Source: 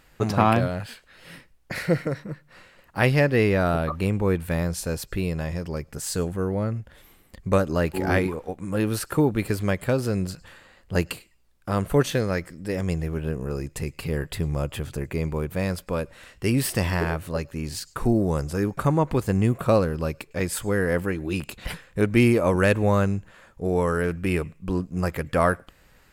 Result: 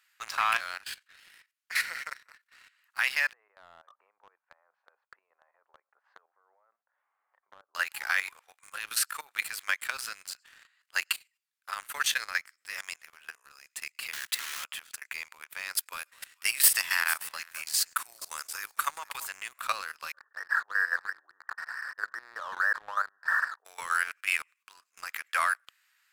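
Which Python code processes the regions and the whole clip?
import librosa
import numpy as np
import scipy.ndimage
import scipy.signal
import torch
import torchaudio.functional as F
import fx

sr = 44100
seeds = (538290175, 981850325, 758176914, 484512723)

y = fx.chain(x, sr, fx.ladder_lowpass(hz=960.0, resonance_pct=30),
    fx.band_squash(depth_pct=100), at=(3.33, 7.75))
y = fx.chain(y, sr, fx.block_float(bits=3),
    fx.band_squash(depth_pct=70), at=(14.13, 14.66))
y = fx.chain(y, sr, fx.high_shelf(hz=8200.0, db=10.5),
    fx.echo_alternate(ms=226, hz=1100.0, feedback_pct=51, wet_db=-10.5), at=(15.75, 19.29))
y = fx.chain(y, sr, fx.brickwall_lowpass(high_hz=1900.0),
    fx.sustainer(db_per_s=24.0), at=(20.12, 23.65))
y = scipy.signal.sosfilt(scipy.signal.butter(4, 1300.0, 'highpass', fs=sr, output='sos'), y)
y = fx.level_steps(y, sr, step_db=11)
y = fx.leveller(y, sr, passes=2)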